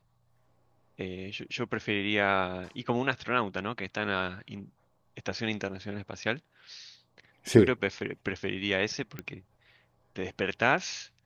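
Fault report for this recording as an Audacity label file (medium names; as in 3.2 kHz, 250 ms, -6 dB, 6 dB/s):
9.190000	9.190000	pop -22 dBFS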